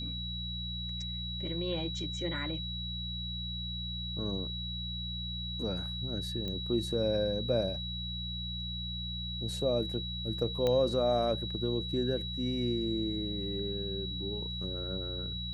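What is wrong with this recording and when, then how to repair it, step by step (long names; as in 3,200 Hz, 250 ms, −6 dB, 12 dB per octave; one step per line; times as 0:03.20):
mains hum 60 Hz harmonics 3 −40 dBFS
whistle 3,900 Hz −38 dBFS
0:06.48: click −25 dBFS
0:10.67: click −18 dBFS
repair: click removal
hum removal 60 Hz, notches 3
notch filter 3,900 Hz, Q 30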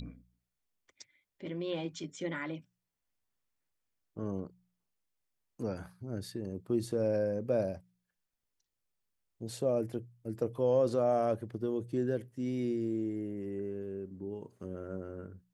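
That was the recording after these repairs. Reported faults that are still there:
none of them is left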